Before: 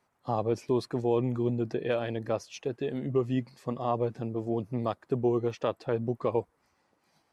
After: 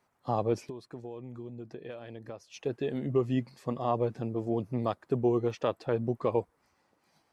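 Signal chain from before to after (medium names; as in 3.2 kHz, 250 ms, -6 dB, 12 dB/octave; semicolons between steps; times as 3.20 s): 0.60–2.63 s: compression 6:1, threshold -40 dBFS, peak gain reduction 17 dB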